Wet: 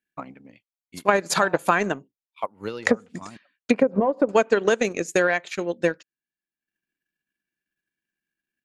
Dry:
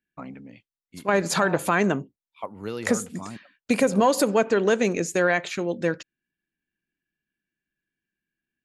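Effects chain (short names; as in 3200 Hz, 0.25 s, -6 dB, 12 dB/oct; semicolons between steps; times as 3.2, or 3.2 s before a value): 2.61–4.29 treble ducked by the level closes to 690 Hz, closed at -16 dBFS; low shelf 240 Hz -8 dB; transient shaper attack +7 dB, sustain -9 dB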